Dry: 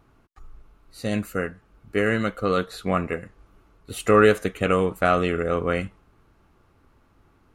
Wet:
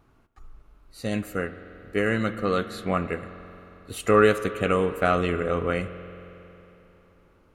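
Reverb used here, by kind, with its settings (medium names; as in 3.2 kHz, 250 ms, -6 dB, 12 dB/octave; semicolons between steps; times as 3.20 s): spring tank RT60 3.4 s, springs 45 ms, chirp 25 ms, DRR 11.5 dB; trim -2 dB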